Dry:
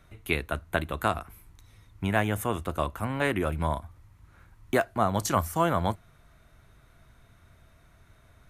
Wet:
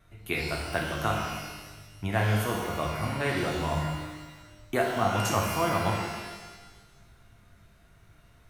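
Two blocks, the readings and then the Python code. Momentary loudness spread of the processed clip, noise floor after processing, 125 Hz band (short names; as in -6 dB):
15 LU, -58 dBFS, +1.5 dB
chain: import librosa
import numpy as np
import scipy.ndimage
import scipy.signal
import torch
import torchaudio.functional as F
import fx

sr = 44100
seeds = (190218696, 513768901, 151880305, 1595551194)

y = fx.vibrato(x, sr, rate_hz=0.43, depth_cents=6.6)
y = fx.rev_shimmer(y, sr, seeds[0], rt60_s=1.3, semitones=12, shimmer_db=-8, drr_db=-1.5)
y = y * 10.0 ** (-4.5 / 20.0)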